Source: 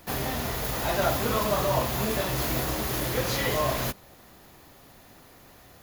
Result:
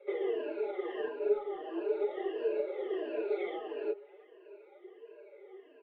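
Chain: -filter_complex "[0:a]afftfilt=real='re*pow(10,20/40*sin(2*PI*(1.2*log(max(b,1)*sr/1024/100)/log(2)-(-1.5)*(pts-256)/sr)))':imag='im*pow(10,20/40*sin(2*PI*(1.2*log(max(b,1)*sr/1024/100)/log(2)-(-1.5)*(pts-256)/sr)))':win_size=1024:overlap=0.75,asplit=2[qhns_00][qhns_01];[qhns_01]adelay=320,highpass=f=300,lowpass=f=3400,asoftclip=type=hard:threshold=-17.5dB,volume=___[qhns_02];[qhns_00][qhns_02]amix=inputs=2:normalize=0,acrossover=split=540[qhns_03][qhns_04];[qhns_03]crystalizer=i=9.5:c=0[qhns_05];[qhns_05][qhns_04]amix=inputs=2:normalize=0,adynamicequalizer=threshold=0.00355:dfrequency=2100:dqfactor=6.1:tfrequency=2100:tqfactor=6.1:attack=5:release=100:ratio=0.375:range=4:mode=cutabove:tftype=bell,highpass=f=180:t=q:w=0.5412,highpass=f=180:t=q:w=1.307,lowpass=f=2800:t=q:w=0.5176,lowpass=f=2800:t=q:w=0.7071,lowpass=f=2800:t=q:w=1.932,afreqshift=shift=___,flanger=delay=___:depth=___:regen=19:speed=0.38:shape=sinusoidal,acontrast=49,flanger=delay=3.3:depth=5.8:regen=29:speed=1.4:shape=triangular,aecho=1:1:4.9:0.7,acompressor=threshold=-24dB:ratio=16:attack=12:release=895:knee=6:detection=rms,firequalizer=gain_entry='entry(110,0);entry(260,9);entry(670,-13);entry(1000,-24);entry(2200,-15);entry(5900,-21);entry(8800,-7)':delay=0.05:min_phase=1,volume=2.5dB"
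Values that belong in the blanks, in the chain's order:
-26dB, 200, 1.8, 5.4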